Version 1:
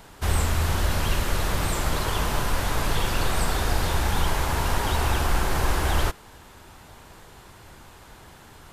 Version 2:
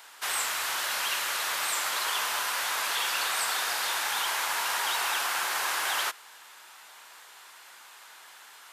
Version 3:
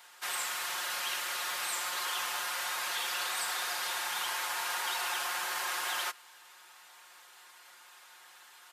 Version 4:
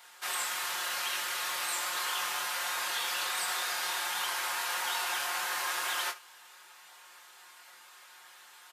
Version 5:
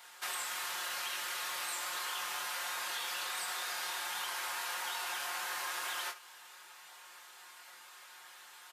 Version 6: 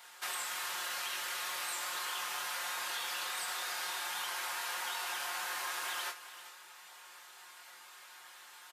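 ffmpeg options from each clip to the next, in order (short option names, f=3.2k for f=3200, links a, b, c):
-af "highpass=1.2k,volume=2.5dB"
-af "aecho=1:1:5.6:0.73,volume=-7dB"
-af "aecho=1:1:23|73:0.562|0.15"
-af "acompressor=threshold=-36dB:ratio=4"
-af "aecho=1:1:396:0.188"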